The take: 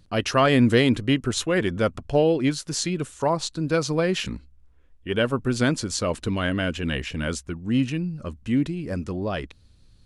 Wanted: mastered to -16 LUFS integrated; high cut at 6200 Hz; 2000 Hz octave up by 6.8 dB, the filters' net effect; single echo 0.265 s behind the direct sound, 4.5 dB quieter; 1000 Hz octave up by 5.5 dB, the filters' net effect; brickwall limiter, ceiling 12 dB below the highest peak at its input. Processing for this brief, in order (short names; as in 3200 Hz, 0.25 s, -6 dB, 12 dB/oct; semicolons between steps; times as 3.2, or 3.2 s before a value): LPF 6200 Hz; bell 1000 Hz +5 dB; bell 2000 Hz +7 dB; limiter -14.5 dBFS; echo 0.265 s -4.5 dB; gain +9 dB